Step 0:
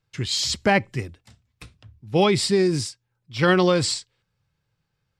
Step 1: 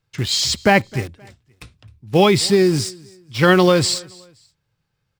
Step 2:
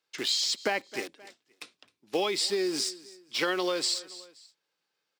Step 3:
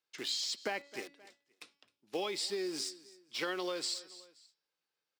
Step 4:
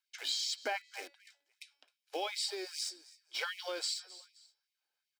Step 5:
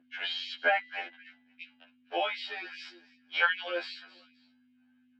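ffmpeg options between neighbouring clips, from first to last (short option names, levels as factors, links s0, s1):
-filter_complex "[0:a]asplit=2[s0][s1];[s1]acrusher=bits=4:mix=0:aa=0.000001,volume=0.335[s2];[s0][s2]amix=inputs=2:normalize=0,aecho=1:1:262|524:0.0631|0.0208,volume=1.33"
-af "highpass=f=290:w=0.5412,highpass=f=290:w=1.3066,equalizer=f=4500:w=0.73:g=5.5,acompressor=threshold=0.1:ratio=6,volume=0.531"
-af "bandreject=f=283.6:t=h:w=4,bandreject=f=567.2:t=h:w=4,bandreject=f=850.8:t=h:w=4,bandreject=f=1134.4:t=h:w=4,bandreject=f=1418:t=h:w=4,bandreject=f=1701.6:t=h:w=4,bandreject=f=1985.2:t=h:w=4,bandreject=f=2268.8:t=h:w=4,bandreject=f=2552.4:t=h:w=4,bandreject=f=2836:t=h:w=4,bandreject=f=3119.6:t=h:w=4,bandreject=f=3403.2:t=h:w=4,bandreject=f=3686.8:t=h:w=4,bandreject=f=3970.4:t=h:w=4,bandreject=f=4254:t=h:w=4,bandreject=f=4537.6:t=h:w=4,bandreject=f=4821.2:t=h:w=4,bandreject=f=5104.8:t=h:w=4,bandreject=f=5388.4:t=h:w=4,bandreject=f=5672:t=h:w=4,volume=0.398"
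-af "aecho=1:1:1.3:0.44,afftfilt=real='re*gte(b*sr/1024,240*pow(1900/240,0.5+0.5*sin(2*PI*2.6*pts/sr)))':imag='im*gte(b*sr/1024,240*pow(1900/240,0.5+0.5*sin(2*PI*2.6*pts/sr)))':win_size=1024:overlap=0.75"
-af "aeval=exprs='val(0)+0.002*(sin(2*PI*50*n/s)+sin(2*PI*2*50*n/s)/2+sin(2*PI*3*50*n/s)/3+sin(2*PI*4*50*n/s)/4+sin(2*PI*5*50*n/s)/5)':c=same,highpass=f=280:w=0.5412,highpass=f=280:w=1.3066,equalizer=f=390:t=q:w=4:g=-7,equalizer=f=720:t=q:w=4:g=5,equalizer=f=1600:t=q:w=4:g=8,equalizer=f=2800:t=q:w=4:g=7,lowpass=f=3000:w=0.5412,lowpass=f=3000:w=1.3066,afftfilt=real='re*2*eq(mod(b,4),0)':imag='im*2*eq(mod(b,4),0)':win_size=2048:overlap=0.75,volume=2.66"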